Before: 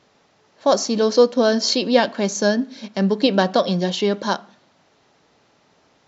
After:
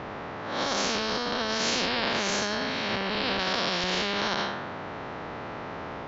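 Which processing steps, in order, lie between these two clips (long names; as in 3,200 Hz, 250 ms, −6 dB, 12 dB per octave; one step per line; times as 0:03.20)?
spectrum smeared in time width 202 ms
low-pass filter 1,800 Hz 12 dB per octave
brickwall limiter −21.5 dBFS, peak gain reduction 10.5 dB
0:03.39–0:03.84: spectral tilt +2.5 dB per octave
every bin compressed towards the loudest bin 4 to 1
level +8.5 dB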